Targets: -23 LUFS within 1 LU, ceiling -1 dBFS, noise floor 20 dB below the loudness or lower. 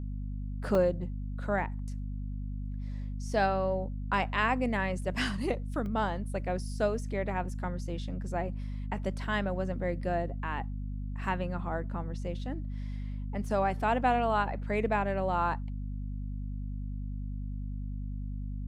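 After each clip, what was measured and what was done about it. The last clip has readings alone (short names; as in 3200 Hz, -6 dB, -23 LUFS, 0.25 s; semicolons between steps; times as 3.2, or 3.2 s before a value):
dropouts 2; longest dropout 1.1 ms; hum 50 Hz; harmonics up to 250 Hz; hum level -33 dBFS; loudness -33.0 LUFS; peak -14.0 dBFS; loudness target -23.0 LUFS
-> interpolate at 0.75/5.86, 1.1 ms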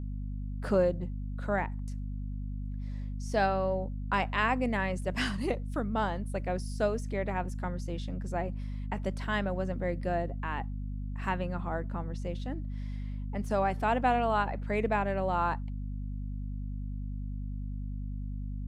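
dropouts 0; hum 50 Hz; harmonics up to 250 Hz; hum level -33 dBFS
-> de-hum 50 Hz, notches 5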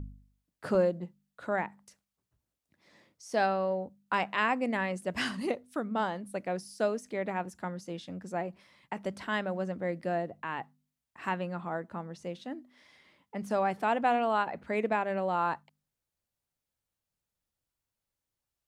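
hum none; loudness -32.5 LUFS; peak -14.0 dBFS; loudness target -23.0 LUFS
-> gain +9.5 dB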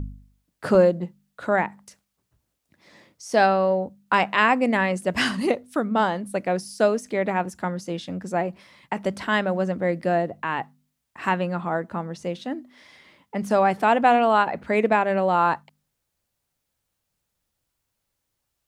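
loudness -23.0 LUFS; peak -4.5 dBFS; noise floor -79 dBFS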